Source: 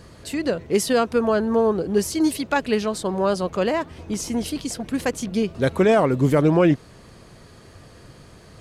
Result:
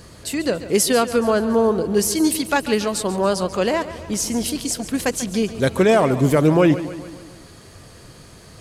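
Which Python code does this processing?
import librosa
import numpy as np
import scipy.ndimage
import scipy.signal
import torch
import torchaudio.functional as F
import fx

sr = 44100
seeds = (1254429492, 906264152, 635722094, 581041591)

p1 = fx.high_shelf(x, sr, hz=4600.0, db=8.5)
p2 = p1 + fx.echo_feedback(p1, sr, ms=141, feedback_pct=56, wet_db=-14.0, dry=0)
y = p2 * 10.0 ** (1.5 / 20.0)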